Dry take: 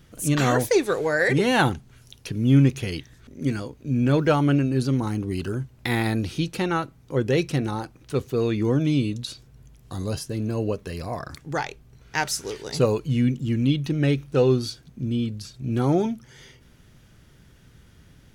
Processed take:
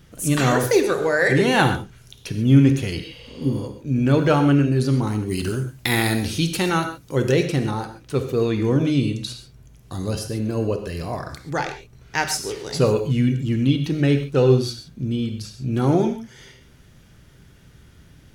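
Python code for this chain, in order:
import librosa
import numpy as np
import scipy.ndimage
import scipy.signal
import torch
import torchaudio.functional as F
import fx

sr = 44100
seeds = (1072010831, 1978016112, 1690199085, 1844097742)

y = fx.spec_repair(x, sr, seeds[0], start_s=3.05, length_s=0.57, low_hz=450.0, high_hz=9100.0, source='both')
y = fx.high_shelf(y, sr, hz=3700.0, db=11.0, at=(5.26, 7.32))
y = fx.rev_gated(y, sr, seeds[1], gate_ms=160, shape='flat', drr_db=6.5)
y = F.gain(torch.from_numpy(y), 2.0).numpy()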